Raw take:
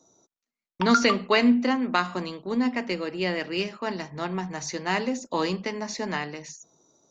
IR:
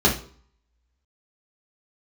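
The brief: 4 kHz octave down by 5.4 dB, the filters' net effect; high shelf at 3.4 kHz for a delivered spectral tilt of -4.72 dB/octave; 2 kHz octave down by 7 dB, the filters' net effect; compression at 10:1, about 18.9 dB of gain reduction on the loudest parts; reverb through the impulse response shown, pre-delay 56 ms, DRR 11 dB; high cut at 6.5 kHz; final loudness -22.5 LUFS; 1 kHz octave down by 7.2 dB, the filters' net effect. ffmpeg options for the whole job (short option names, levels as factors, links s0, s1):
-filter_complex "[0:a]lowpass=6500,equalizer=f=1000:t=o:g=-8,equalizer=f=2000:t=o:g=-6,highshelf=f=3400:g=6.5,equalizer=f=4000:t=o:g=-8.5,acompressor=threshold=0.0158:ratio=10,asplit=2[s0][s1];[1:a]atrim=start_sample=2205,adelay=56[s2];[s1][s2]afir=irnorm=-1:irlink=0,volume=0.0355[s3];[s0][s3]amix=inputs=2:normalize=0,volume=7.08"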